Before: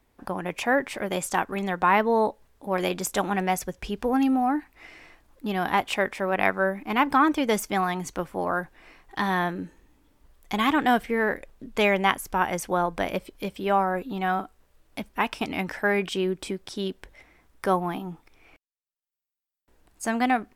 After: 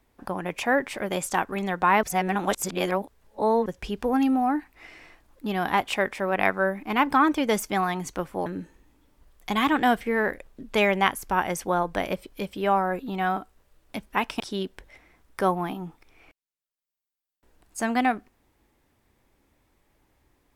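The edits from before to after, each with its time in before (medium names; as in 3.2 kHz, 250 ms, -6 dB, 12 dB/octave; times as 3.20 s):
2.03–3.66 s: reverse
8.46–9.49 s: delete
15.43–16.65 s: delete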